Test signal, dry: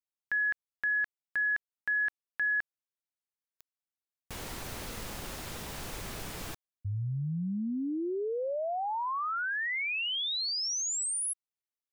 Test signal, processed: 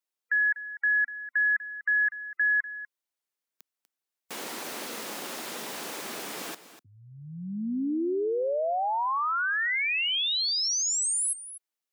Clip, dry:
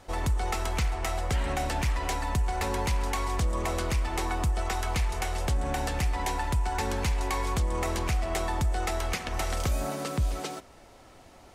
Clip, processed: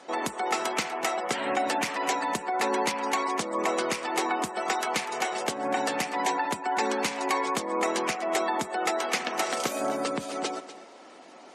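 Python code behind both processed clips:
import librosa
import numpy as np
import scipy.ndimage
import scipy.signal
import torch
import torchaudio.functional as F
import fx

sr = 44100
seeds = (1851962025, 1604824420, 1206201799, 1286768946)

p1 = scipy.signal.sosfilt(scipy.signal.butter(4, 230.0, 'highpass', fs=sr, output='sos'), x)
p2 = fx.spec_gate(p1, sr, threshold_db=-25, keep='strong')
p3 = p2 + fx.echo_single(p2, sr, ms=245, db=-14.5, dry=0)
y = F.gain(torch.from_numpy(p3), 5.0).numpy()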